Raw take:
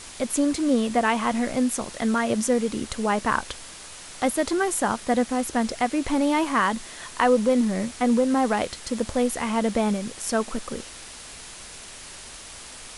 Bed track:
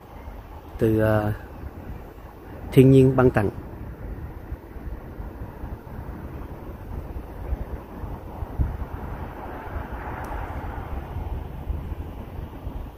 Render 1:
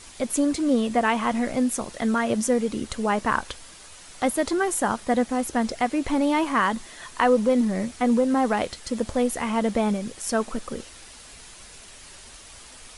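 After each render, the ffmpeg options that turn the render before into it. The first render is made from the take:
ffmpeg -i in.wav -af "afftdn=noise_reduction=6:noise_floor=-42" out.wav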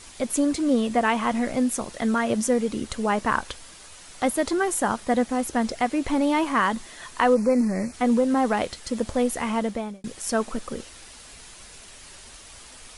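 ffmpeg -i in.wav -filter_complex "[0:a]asplit=3[link_01][link_02][link_03];[link_01]afade=type=out:start_time=7.34:duration=0.02[link_04];[link_02]asuperstop=centerf=3300:order=12:qfactor=2.2,afade=type=in:start_time=7.34:duration=0.02,afade=type=out:start_time=7.92:duration=0.02[link_05];[link_03]afade=type=in:start_time=7.92:duration=0.02[link_06];[link_04][link_05][link_06]amix=inputs=3:normalize=0,asplit=2[link_07][link_08];[link_07]atrim=end=10.04,asetpts=PTS-STARTPTS,afade=type=out:start_time=9.51:duration=0.53[link_09];[link_08]atrim=start=10.04,asetpts=PTS-STARTPTS,afade=type=in:duration=0.004:curve=hsin[link_10];[link_09][link_10]concat=n=2:v=0:a=1" out.wav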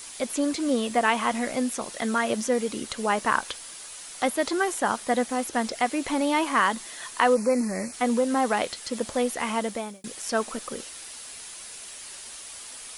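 ffmpeg -i in.wav -filter_complex "[0:a]acrossover=split=4900[link_01][link_02];[link_02]acompressor=threshold=-49dB:ratio=4:attack=1:release=60[link_03];[link_01][link_03]amix=inputs=2:normalize=0,aemphasis=mode=production:type=bsi" out.wav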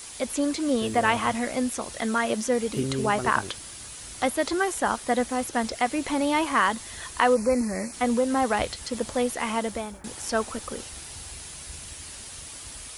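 ffmpeg -i in.wav -i bed.wav -filter_complex "[1:a]volume=-15.5dB[link_01];[0:a][link_01]amix=inputs=2:normalize=0" out.wav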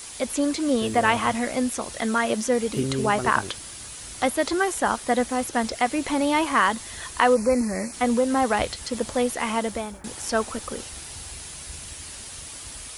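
ffmpeg -i in.wav -af "volume=2dB" out.wav

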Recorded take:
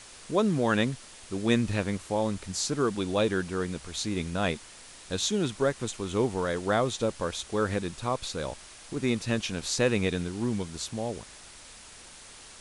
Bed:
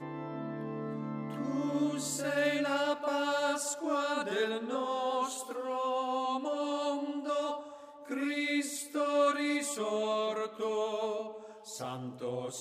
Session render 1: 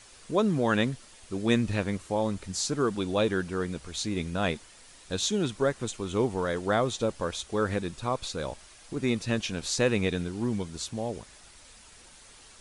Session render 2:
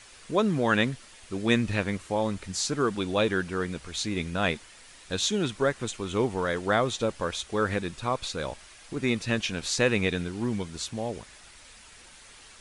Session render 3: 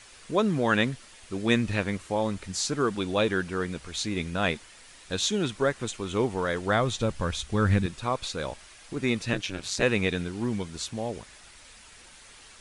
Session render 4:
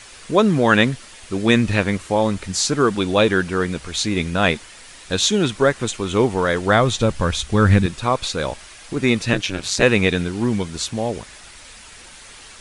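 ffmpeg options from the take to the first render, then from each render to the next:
ffmpeg -i in.wav -af "afftdn=noise_reduction=6:noise_floor=-49" out.wav
ffmpeg -i in.wav -af "equalizer=frequency=2100:width_type=o:width=1.7:gain=5" out.wav
ffmpeg -i in.wav -filter_complex "[0:a]asettb=1/sr,asplit=3[link_01][link_02][link_03];[link_01]atrim=end=6.484[link_04];[link_02]atrim=start=6.48:end=7.86,asetpts=PTS-STARTPTS,afade=type=in:duration=0.004:curve=qsin,afade=type=out:start_time=1.376:duration=0.004:curve=qsin,asubboost=boost=11:cutoff=200[link_05];[link_03]atrim=start=7.856[link_06];[link_04][link_05]acrossfade=duration=0.004:curve1=hsin:curve2=qsin[link_07];[link_07][link_06]acrossfade=duration=0.004:curve1=qsin:curve2=hsin,asettb=1/sr,asplit=3[link_08][link_09][link_10];[link_08]atrim=end=9.334[link_11];[link_09]atrim=start=9.33:end=9.83,asetpts=PTS-STARTPTS,afade=type=in:duration=0.004:curve=qsin,afade=type=out:start_time=0.496:duration=0.004:curve=qsin,aeval=exprs='val(0)*sin(2*PI*95*n/s)':channel_layout=same[link_12];[link_10]atrim=start=9.826[link_13];[link_11][link_12]acrossfade=duration=0.004:curve1=hsin:curve2=qsin[link_14];[link_14][link_13]acrossfade=duration=0.004:curve1=qsin:curve2=hsin" out.wav
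ffmpeg -i in.wav -af "volume=9dB,alimiter=limit=-1dB:level=0:latency=1" out.wav

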